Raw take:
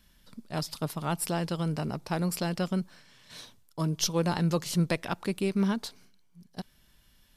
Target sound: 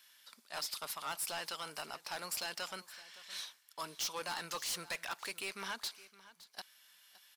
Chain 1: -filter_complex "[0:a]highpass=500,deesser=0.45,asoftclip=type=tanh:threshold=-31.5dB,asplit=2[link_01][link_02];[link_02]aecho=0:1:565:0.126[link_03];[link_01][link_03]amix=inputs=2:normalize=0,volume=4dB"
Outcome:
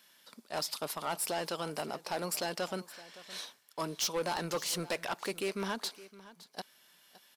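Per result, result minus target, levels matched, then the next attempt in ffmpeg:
500 Hz band +7.0 dB; soft clipping: distortion −3 dB
-filter_complex "[0:a]highpass=1200,deesser=0.45,asoftclip=type=tanh:threshold=-31.5dB,asplit=2[link_01][link_02];[link_02]aecho=0:1:565:0.126[link_03];[link_01][link_03]amix=inputs=2:normalize=0,volume=4dB"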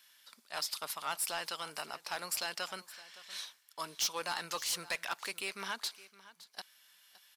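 soft clipping: distortion −4 dB
-filter_complex "[0:a]highpass=1200,deesser=0.45,asoftclip=type=tanh:threshold=-38dB,asplit=2[link_01][link_02];[link_02]aecho=0:1:565:0.126[link_03];[link_01][link_03]amix=inputs=2:normalize=0,volume=4dB"

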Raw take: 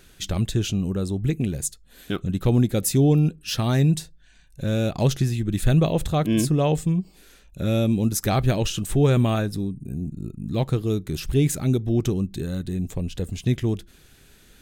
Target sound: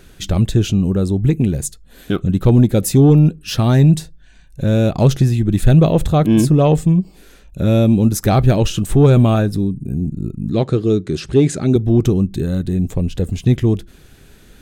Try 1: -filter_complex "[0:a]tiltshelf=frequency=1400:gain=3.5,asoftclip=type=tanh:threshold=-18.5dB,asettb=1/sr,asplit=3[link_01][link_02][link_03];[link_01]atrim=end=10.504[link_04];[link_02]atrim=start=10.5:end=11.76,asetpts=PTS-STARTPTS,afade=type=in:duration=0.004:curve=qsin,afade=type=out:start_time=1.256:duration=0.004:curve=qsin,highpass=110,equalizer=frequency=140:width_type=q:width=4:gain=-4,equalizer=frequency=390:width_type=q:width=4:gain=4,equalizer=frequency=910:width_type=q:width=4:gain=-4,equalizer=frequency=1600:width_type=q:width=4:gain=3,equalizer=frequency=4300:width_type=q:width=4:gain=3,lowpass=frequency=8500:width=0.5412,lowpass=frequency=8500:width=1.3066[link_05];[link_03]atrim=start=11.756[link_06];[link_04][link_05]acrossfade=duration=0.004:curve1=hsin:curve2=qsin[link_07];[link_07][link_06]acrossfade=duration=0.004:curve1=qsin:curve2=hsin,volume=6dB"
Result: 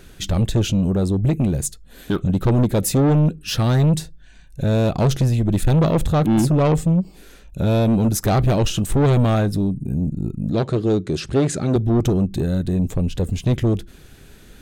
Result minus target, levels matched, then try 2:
soft clipping: distortion +13 dB
-filter_complex "[0:a]tiltshelf=frequency=1400:gain=3.5,asoftclip=type=tanh:threshold=-7dB,asettb=1/sr,asplit=3[link_01][link_02][link_03];[link_01]atrim=end=10.504[link_04];[link_02]atrim=start=10.5:end=11.76,asetpts=PTS-STARTPTS,afade=type=in:duration=0.004:curve=qsin,afade=type=out:start_time=1.256:duration=0.004:curve=qsin,highpass=110,equalizer=frequency=140:width_type=q:width=4:gain=-4,equalizer=frequency=390:width_type=q:width=4:gain=4,equalizer=frequency=910:width_type=q:width=4:gain=-4,equalizer=frequency=1600:width_type=q:width=4:gain=3,equalizer=frequency=4300:width_type=q:width=4:gain=3,lowpass=frequency=8500:width=0.5412,lowpass=frequency=8500:width=1.3066[link_05];[link_03]atrim=start=11.756[link_06];[link_04][link_05]acrossfade=duration=0.004:curve1=hsin:curve2=qsin[link_07];[link_07][link_06]acrossfade=duration=0.004:curve1=qsin:curve2=hsin,volume=6dB"

